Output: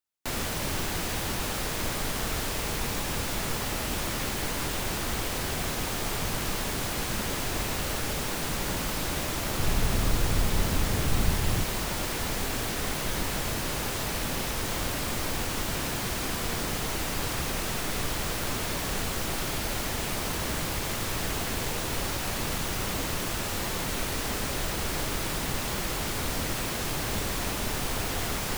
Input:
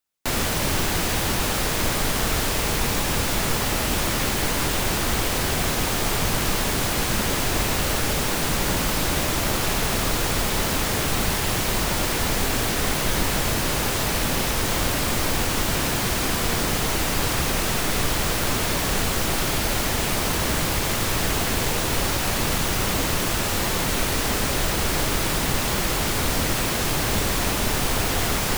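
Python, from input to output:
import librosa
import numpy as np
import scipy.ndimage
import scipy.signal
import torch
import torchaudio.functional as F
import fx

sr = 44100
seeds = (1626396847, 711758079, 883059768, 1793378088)

y = fx.low_shelf(x, sr, hz=190.0, db=10.5, at=(9.58, 11.64))
y = F.gain(torch.from_numpy(y), -7.5).numpy()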